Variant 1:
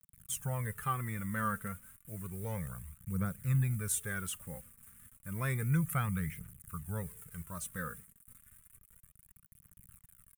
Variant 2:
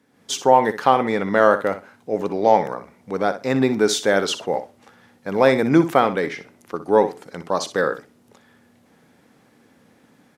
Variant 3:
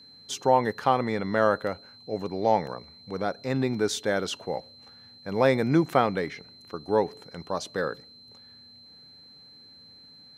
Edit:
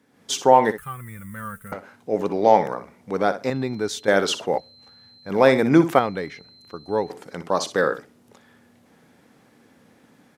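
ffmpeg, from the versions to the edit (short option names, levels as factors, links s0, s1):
-filter_complex "[2:a]asplit=3[s0][s1][s2];[1:a]asplit=5[s3][s4][s5][s6][s7];[s3]atrim=end=0.782[s8];[0:a]atrim=start=0.778:end=1.722[s9];[s4]atrim=start=1.718:end=3.502[s10];[s0]atrim=start=3.498:end=4.082[s11];[s5]atrim=start=4.078:end=4.582[s12];[s1]atrim=start=4.578:end=5.302[s13];[s6]atrim=start=5.298:end=5.992[s14];[s2]atrim=start=5.988:end=7.102[s15];[s7]atrim=start=7.098[s16];[s8][s9]acrossfade=d=0.004:c1=hsin:c2=hsin[s17];[s17][s10]acrossfade=d=0.004:c1=hsin:c2=hsin[s18];[s18][s11]acrossfade=d=0.004:c1=hsin:c2=hsin[s19];[s19][s12]acrossfade=d=0.004:c1=hsin:c2=hsin[s20];[s20][s13]acrossfade=d=0.004:c1=hsin:c2=hsin[s21];[s21][s14]acrossfade=d=0.004:c1=hsin:c2=hsin[s22];[s22][s15]acrossfade=d=0.004:c1=hsin:c2=hsin[s23];[s23][s16]acrossfade=d=0.004:c1=hsin:c2=hsin"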